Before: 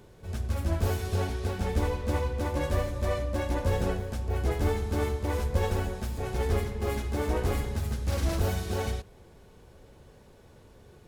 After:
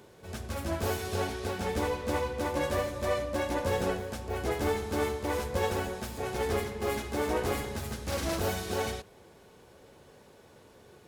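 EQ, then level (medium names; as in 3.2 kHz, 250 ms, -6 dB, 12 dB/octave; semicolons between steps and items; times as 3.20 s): high-pass 280 Hz 6 dB/octave; +2.5 dB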